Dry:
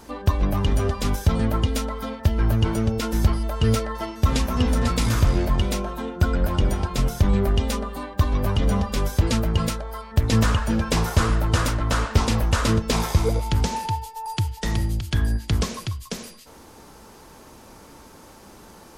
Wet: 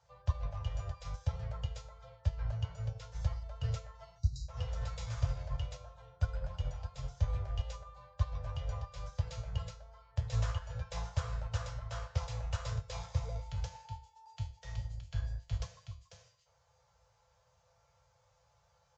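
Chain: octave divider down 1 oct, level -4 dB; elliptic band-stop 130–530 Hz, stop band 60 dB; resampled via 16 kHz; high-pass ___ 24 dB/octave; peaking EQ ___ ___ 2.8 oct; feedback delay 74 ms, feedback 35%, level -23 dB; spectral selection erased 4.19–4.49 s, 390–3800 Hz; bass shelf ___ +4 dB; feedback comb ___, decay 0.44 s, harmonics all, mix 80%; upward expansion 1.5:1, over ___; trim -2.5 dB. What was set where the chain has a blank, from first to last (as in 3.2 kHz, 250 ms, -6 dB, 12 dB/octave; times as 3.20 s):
46 Hz, 2.6 kHz, -3 dB, 410 Hz, 170 Hz, -40 dBFS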